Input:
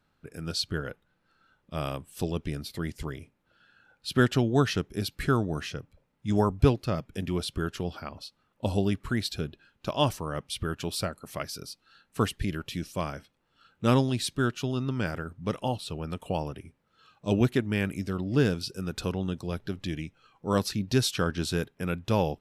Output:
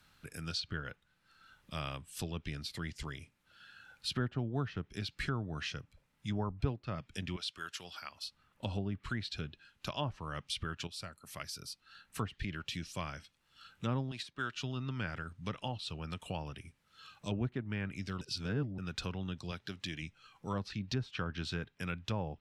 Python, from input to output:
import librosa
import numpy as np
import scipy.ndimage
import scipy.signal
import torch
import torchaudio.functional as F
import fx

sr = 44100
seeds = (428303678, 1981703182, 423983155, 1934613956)

y = fx.highpass(x, sr, hz=1300.0, slope=6, at=(7.36, 8.23))
y = fx.riaa(y, sr, side='recording', at=(14.11, 14.55))
y = fx.highpass(y, sr, hz=180.0, slope=6, at=(19.51, 20.02))
y = fx.edit(y, sr, fx.fade_in_from(start_s=10.87, length_s=1.42, floor_db=-12.0),
    fx.reverse_span(start_s=18.21, length_s=0.57), tone=tone)
y = fx.env_lowpass_down(y, sr, base_hz=1000.0, full_db=-21.5)
y = fx.tone_stack(y, sr, knobs='5-5-5')
y = fx.band_squash(y, sr, depth_pct=40)
y = y * librosa.db_to_amplitude(7.0)